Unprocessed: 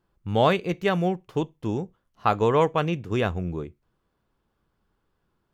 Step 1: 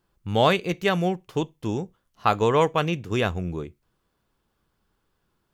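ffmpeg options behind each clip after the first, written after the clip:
-af "highshelf=f=2.6k:g=7.5"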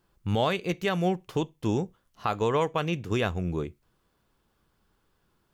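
-af "alimiter=limit=-17dB:level=0:latency=1:release=402,volume=2dB"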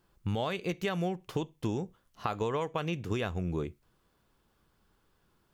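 -af "acompressor=threshold=-28dB:ratio=6"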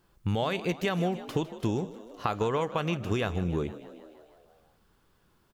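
-filter_complex "[0:a]asplit=8[a][b][c][d][e][f][g][h];[b]adelay=155,afreqshift=56,volume=-15.5dB[i];[c]adelay=310,afreqshift=112,volume=-19.5dB[j];[d]adelay=465,afreqshift=168,volume=-23.5dB[k];[e]adelay=620,afreqshift=224,volume=-27.5dB[l];[f]adelay=775,afreqshift=280,volume=-31.6dB[m];[g]adelay=930,afreqshift=336,volume=-35.6dB[n];[h]adelay=1085,afreqshift=392,volume=-39.6dB[o];[a][i][j][k][l][m][n][o]amix=inputs=8:normalize=0,volume=3.5dB"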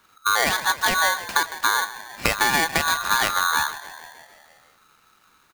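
-af "aeval=exprs='val(0)*sgn(sin(2*PI*1300*n/s))':c=same,volume=7.5dB"

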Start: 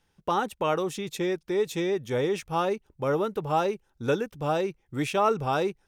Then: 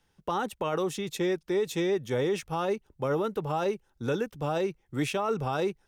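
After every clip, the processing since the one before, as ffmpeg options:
-filter_complex "[0:a]bandreject=f=2.4k:w=26,acrossover=split=150[a][b];[b]alimiter=limit=-20dB:level=0:latency=1:release=17[c];[a][c]amix=inputs=2:normalize=0"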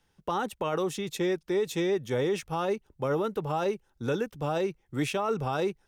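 -af anull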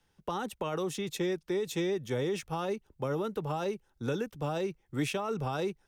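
-filter_complex "[0:a]acrossover=split=290|3000[a][b][c];[b]acompressor=threshold=-30dB:ratio=6[d];[a][d][c]amix=inputs=3:normalize=0,volume=-1.5dB"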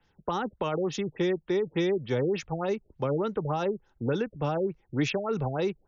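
-af "afftfilt=real='re*lt(b*sr/1024,670*pow(7300/670,0.5+0.5*sin(2*PI*3.4*pts/sr)))':imag='im*lt(b*sr/1024,670*pow(7300/670,0.5+0.5*sin(2*PI*3.4*pts/sr)))':win_size=1024:overlap=0.75,volume=4.5dB"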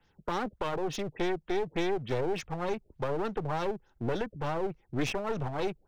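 -af "aeval=exprs='clip(val(0),-1,0.0133)':c=same"

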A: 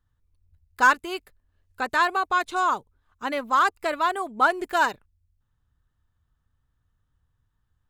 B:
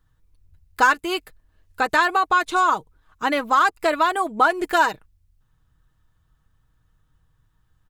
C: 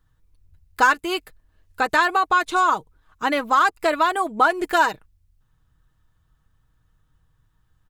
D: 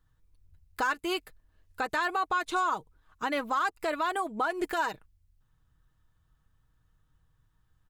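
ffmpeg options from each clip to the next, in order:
-af "aecho=1:1:6.3:0.38,acompressor=threshold=-26dB:ratio=2,volume=8dB"
-af anull
-af "alimiter=limit=-15dB:level=0:latency=1:release=155,volume=-5dB"

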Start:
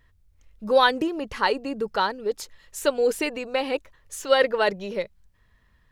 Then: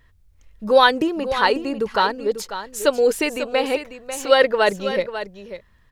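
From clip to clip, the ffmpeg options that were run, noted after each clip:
-af "aecho=1:1:544:0.282,volume=4.5dB"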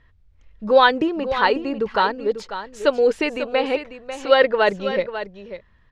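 -af "lowpass=3.8k"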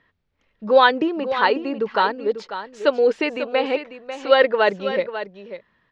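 -filter_complex "[0:a]acrossover=split=150 6300:gain=0.0708 1 0.1[a][b][c];[a][b][c]amix=inputs=3:normalize=0"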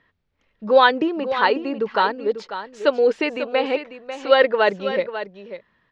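-af anull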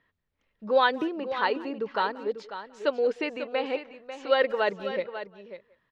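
-filter_complex "[0:a]asplit=2[a][b];[b]adelay=180,highpass=300,lowpass=3.4k,asoftclip=type=hard:threshold=-9dB,volume=-20dB[c];[a][c]amix=inputs=2:normalize=0,volume=-8dB"

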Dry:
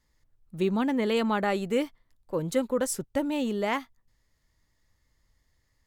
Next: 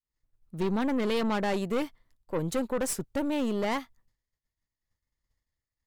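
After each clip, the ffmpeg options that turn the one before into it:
-af "agate=range=-33dB:threshold=-57dB:ratio=3:detection=peak,aeval=exprs='(tanh(22.4*val(0)+0.55)-tanh(0.55))/22.4':c=same,volume=3dB"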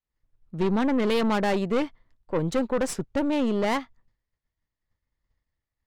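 -af "adynamicsmooth=sensitivity=5.5:basefreq=4k,volume=4.5dB"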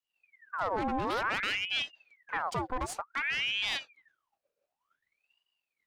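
-af "alimiter=limit=-23.5dB:level=0:latency=1:release=486,aeval=exprs='val(0)*sin(2*PI*1700*n/s+1700*0.7/0.55*sin(2*PI*0.55*n/s))':c=same,volume=1.5dB"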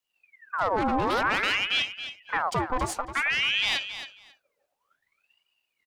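-af "aecho=1:1:272|544:0.282|0.0451,volume=6dB"

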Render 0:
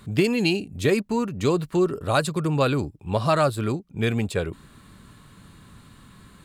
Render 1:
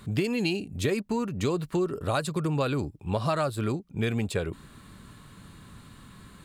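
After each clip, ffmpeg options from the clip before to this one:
-af "acompressor=threshold=-25dB:ratio=3"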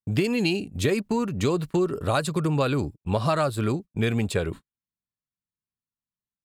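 -af "agate=range=-56dB:threshold=-38dB:ratio=16:detection=peak,volume=3.5dB"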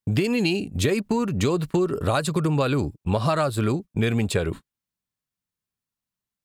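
-af "acompressor=threshold=-27dB:ratio=2,volume=5.5dB"

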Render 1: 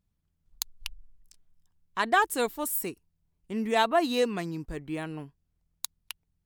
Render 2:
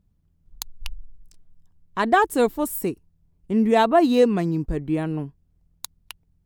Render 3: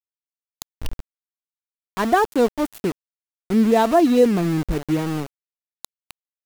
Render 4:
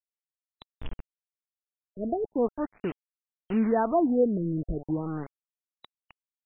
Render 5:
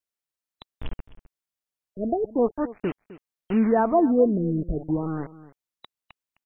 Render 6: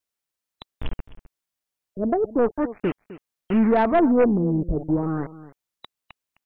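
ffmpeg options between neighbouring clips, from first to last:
-af "tiltshelf=f=820:g=6.5,volume=6dB"
-af "tiltshelf=f=820:g=3.5,aeval=exprs='val(0)*gte(abs(val(0)),0.0531)':c=same"
-af "acrusher=bits=4:mix=0:aa=0.000001,afftfilt=real='re*lt(b*sr/1024,630*pow(4000/630,0.5+0.5*sin(2*PI*0.39*pts/sr)))':imag='im*lt(b*sr/1024,630*pow(4000/630,0.5+0.5*sin(2*PI*0.39*pts/sr)))':win_size=1024:overlap=0.75,volume=-8dB"
-af "aecho=1:1:259:0.133,volume=4dB"
-af "aeval=exprs='0.376*(cos(1*acos(clip(val(0)/0.376,-1,1)))-cos(1*PI/2))+0.075*(cos(2*acos(clip(val(0)/0.376,-1,1)))-cos(2*PI/2))+0.0473*(cos(5*acos(clip(val(0)/0.376,-1,1)))-cos(5*PI/2))':c=same"

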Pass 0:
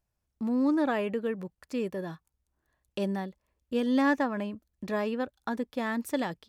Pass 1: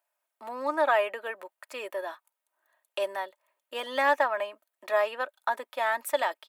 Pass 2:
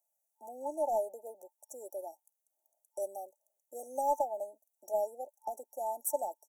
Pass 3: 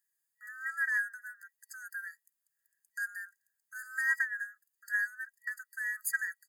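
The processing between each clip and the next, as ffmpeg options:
-af "highpass=f=610:w=0.5412,highpass=f=610:w=1.3066,equalizer=f=5.4k:w=1.2:g=-10,aecho=1:1:3.2:0.49,volume=7.5dB"
-af "tiltshelf=f=970:g=-6.5,aeval=exprs='0.266*(cos(1*acos(clip(val(0)/0.266,-1,1)))-cos(1*PI/2))+0.0211*(cos(3*acos(clip(val(0)/0.266,-1,1)))-cos(3*PI/2))':c=same,afftfilt=real='re*(1-between(b*sr/4096,890,5600))':imag='im*(1-between(b*sr/4096,890,5600))':win_size=4096:overlap=0.75,volume=-1.5dB"
-af "afftfilt=real='real(if(lt(b,960),b+48*(1-2*mod(floor(b/48),2)),b),0)':imag='imag(if(lt(b,960),b+48*(1-2*mod(floor(b/48),2)),b),0)':win_size=2048:overlap=0.75"

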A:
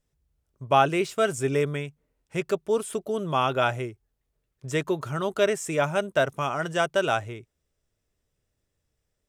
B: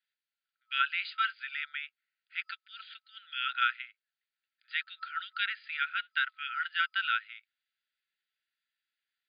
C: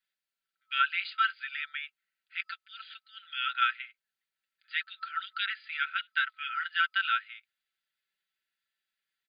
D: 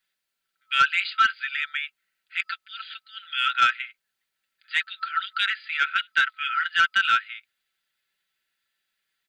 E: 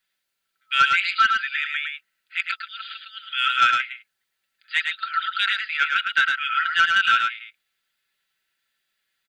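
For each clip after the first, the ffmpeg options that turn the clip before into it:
-af "afftfilt=real='re*between(b*sr/4096,1300,4900)':imag='im*between(b*sr/4096,1300,4900)':win_size=4096:overlap=0.75"
-af "aecho=1:1:5.2:0.51"
-af "asoftclip=type=tanh:threshold=-17.5dB,volume=8.5dB"
-af "aecho=1:1:108:0.596,volume=1.5dB"

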